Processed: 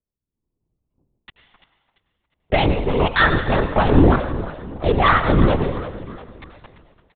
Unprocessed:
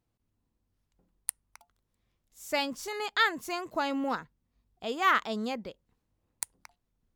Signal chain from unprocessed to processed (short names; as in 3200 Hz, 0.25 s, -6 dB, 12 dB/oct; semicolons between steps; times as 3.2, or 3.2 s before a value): Wiener smoothing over 25 samples; HPF 75 Hz; low shelf 490 Hz +4.5 dB; sample leveller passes 3; limiter -14 dBFS, peak gain reduction 5.5 dB; AGC gain up to 15.5 dB; feedback echo 0.343 s, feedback 42%, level -14 dB; on a send at -8 dB: reverb RT60 1.1 s, pre-delay 82 ms; on the sum: LPC vocoder at 8 kHz whisper; gain -7 dB